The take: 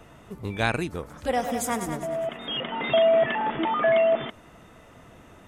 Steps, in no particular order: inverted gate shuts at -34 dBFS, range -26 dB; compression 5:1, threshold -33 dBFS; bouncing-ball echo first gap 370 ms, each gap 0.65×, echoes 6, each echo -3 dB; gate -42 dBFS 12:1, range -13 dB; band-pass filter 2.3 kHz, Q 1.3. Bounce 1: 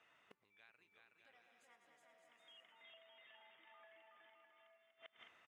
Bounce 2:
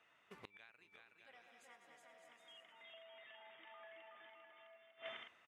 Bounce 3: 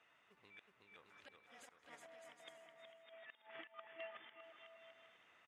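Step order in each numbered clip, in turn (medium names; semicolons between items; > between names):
compression > gate > bouncing-ball echo > inverted gate > band-pass filter; gate > band-pass filter > compression > bouncing-ball echo > inverted gate; compression > band-pass filter > inverted gate > bouncing-ball echo > gate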